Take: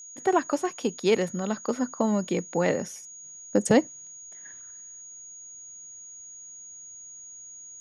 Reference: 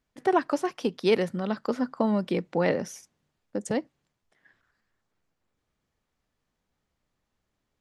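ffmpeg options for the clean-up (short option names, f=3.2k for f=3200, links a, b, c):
-af "bandreject=f=6.7k:w=30,asetnsamples=n=441:p=0,asendcmd='3.24 volume volume -8.5dB',volume=0dB"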